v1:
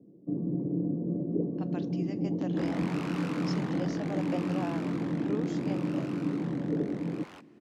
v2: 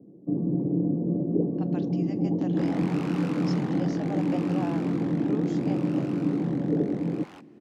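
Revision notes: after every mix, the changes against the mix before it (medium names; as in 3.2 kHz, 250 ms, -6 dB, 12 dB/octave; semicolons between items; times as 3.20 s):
first sound +5.0 dB; master: add peaking EQ 790 Hz +5.5 dB 0.24 oct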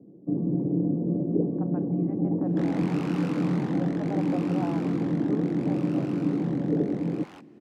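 speech: add low-pass 1.4 kHz 24 dB/octave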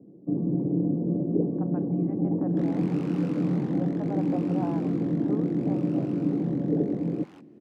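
second sound -7.0 dB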